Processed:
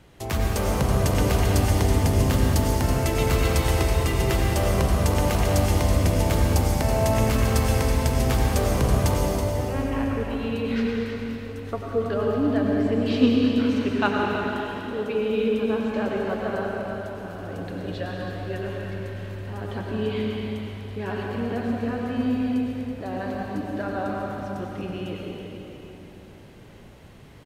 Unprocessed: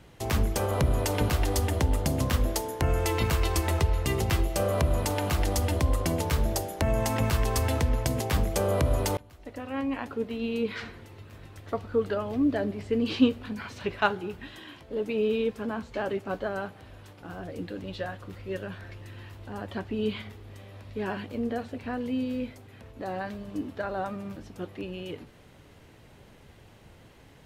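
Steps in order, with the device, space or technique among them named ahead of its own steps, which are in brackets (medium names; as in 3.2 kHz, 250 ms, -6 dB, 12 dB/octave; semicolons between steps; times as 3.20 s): cave (delay 327 ms -10 dB; reverberation RT60 3.6 s, pre-delay 86 ms, DRR -1.5 dB)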